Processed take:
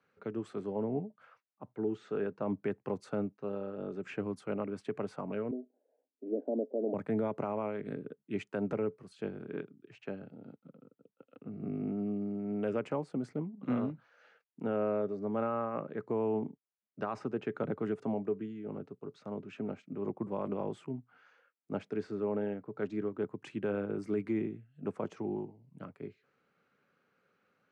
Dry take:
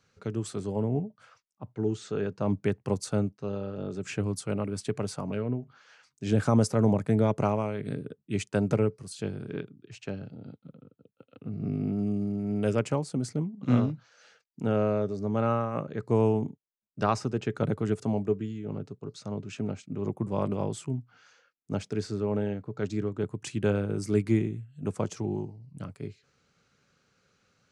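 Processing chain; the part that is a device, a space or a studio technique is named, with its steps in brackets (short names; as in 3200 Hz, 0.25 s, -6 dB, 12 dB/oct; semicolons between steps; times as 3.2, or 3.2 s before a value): 5.51–6.94 elliptic band-pass 250–650 Hz, stop band 40 dB; DJ mixer with the lows and highs turned down (three-band isolator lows -18 dB, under 180 Hz, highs -21 dB, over 2700 Hz; limiter -21 dBFS, peak gain reduction 10 dB); gain -2.5 dB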